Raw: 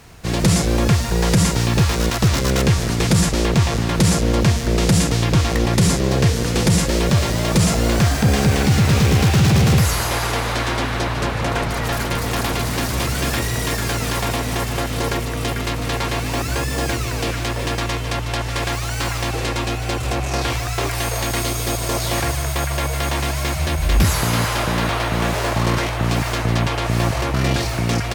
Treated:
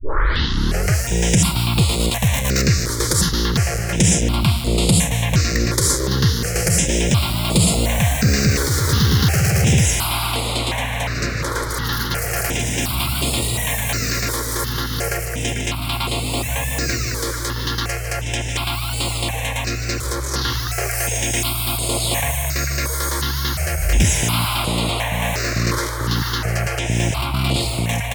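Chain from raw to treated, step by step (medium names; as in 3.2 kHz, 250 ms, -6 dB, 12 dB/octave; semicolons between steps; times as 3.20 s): tape start-up on the opening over 1.03 s; treble shelf 2.5 kHz +8.5 dB; stepped phaser 2.8 Hz 730–5900 Hz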